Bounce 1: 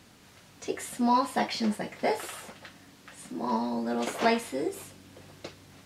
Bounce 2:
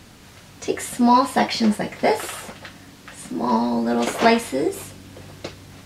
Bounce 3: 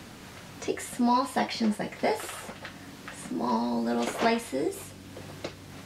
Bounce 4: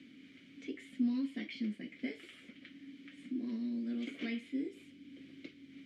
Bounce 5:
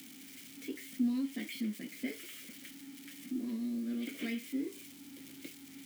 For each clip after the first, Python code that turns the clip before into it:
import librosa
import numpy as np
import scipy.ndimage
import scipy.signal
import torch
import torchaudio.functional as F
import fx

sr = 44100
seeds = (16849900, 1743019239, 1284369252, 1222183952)

y1 = fx.low_shelf(x, sr, hz=76.0, db=10.0)
y1 = F.gain(torch.from_numpy(y1), 8.5).numpy()
y2 = fx.band_squash(y1, sr, depth_pct=40)
y2 = F.gain(torch.from_numpy(y2), -7.5).numpy()
y3 = fx.vowel_filter(y2, sr, vowel='i')
y4 = y3 + 0.5 * 10.0 ** (-41.5 / 20.0) * np.diff(np.sign(y3), prepend=np.sign(y3[:1]))
y4 = F.gain(torch.from_numpy(y4), 1.0).numpy()